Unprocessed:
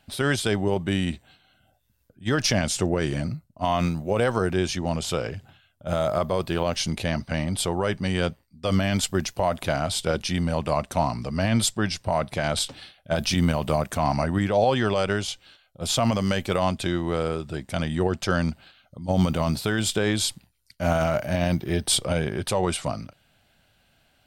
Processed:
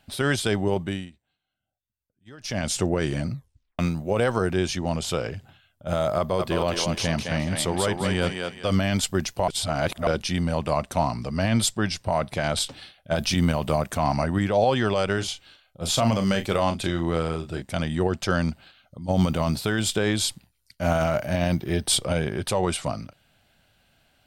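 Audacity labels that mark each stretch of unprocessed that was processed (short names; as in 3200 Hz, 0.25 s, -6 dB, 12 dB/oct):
0.780000	2.720000	dip -22 dB, fades 0.32 s
3.330000	3.330000	tape stop 0.46 s
6.180000	8.770000	thinning echo 0.211 s, feedback 35%, high-pass 370 Hz, level -3 dB
9.480000	10.070000	reverse
15.140000	17.620000	doubler 36 ms -9 dB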